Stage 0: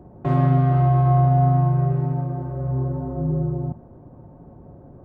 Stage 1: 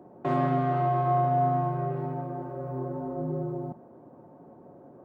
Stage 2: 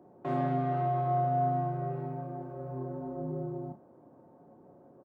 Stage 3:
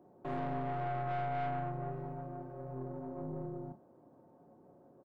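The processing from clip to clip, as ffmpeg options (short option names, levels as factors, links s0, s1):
-af "highpass=270,volume=0.891"
-filter_complex "[0:a]asplit=2[s0][s1];[s1]adelay=31,volume=0.447[s2];[s0][s2]amix=inputs=2:normalize=0,volume=0.447"
-af "aeval=exprs='(tanh(31.6*val(0)+0.5)-tanh(0.5))/31.6':c=same,volume=0.75"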